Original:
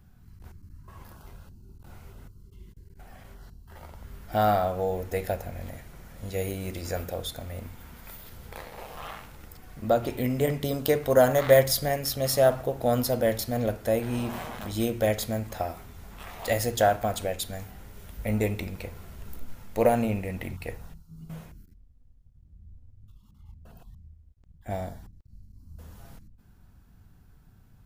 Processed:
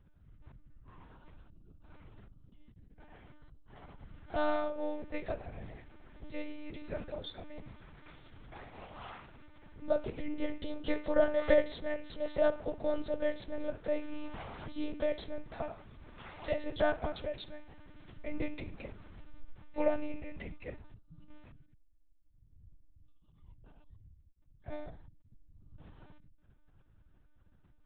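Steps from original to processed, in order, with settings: monotone LPC vocoder at 8 kHz 300 Hz; trim -7.5 dB

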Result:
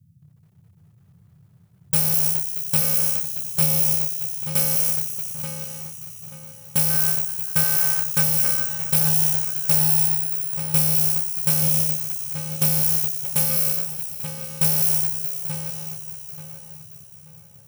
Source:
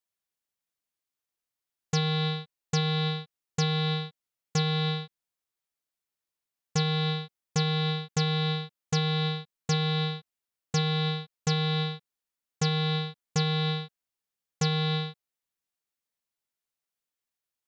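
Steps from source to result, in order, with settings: bit-reversed sample order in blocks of 64 samples; 6.90–8.23 s: peaking EQ 1.5 kHz +11.5 dB 0.55 oct; filtered feedback delay 882 ms, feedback 34%, low-pass 3.2 kHz, level -6 dB; band noise 85–170 Hz -54 dBFS; treble shelf 6.6 kHz +11.5 dB; bit-crushed delay 209 ms, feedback 80%, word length 10-bit, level -10 dB

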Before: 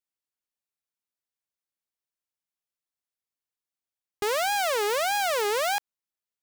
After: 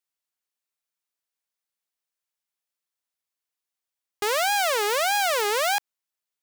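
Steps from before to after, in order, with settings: bass shelf 340 Hz -10.5 dB; trim +4 dB

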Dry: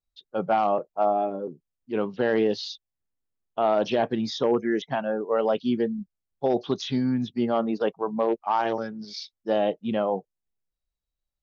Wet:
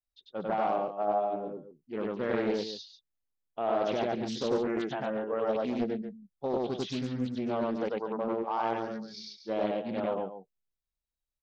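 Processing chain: loudspeakers at several distances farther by 33 m 0 dB, 81 m -10 dB; loudspeaker Doppler distortion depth 0.47 ms; trim -9 dB

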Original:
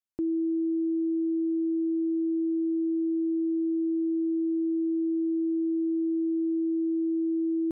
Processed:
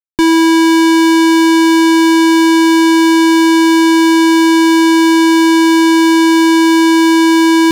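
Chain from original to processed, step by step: fuzz box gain 56 dB, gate -58 dBFS; trim +5.5 dB

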